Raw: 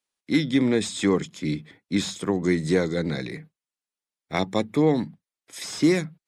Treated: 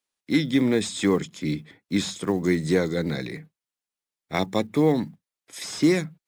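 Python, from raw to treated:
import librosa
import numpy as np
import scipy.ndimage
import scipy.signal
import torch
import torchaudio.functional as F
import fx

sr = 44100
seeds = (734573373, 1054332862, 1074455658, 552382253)

y = fx.block_float(x, sr, bits=7)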